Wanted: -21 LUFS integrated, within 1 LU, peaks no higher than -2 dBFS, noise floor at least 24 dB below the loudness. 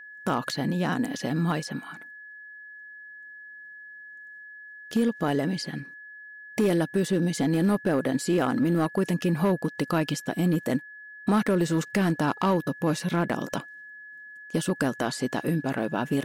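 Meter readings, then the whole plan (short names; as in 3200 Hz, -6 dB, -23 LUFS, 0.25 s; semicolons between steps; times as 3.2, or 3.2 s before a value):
clipped 1.0%; flat tops at -17.0 dBFS; steady tone 1700 Hz; tone level -42 dBFS; loudness -26.5 LUFS; peak -17.0 dBFS; loudness target -21.0 LUFS
-> clip repair -17 dBFS; notch 1700 Hz, Q 30; gain +5.5 dB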